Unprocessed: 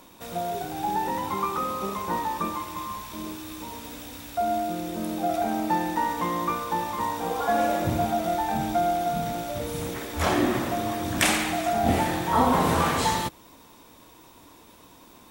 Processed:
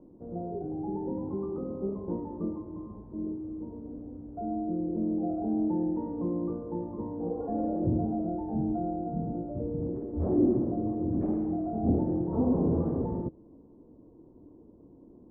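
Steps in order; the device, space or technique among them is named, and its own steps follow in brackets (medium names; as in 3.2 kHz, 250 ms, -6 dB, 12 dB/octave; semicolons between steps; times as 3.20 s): overdriven synthesiser ladder filter (saturation -16.5 dBFS, distortion -18 dB; four-pole ladder low-pass 490 Hz, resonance 30%); trim +6.5 dB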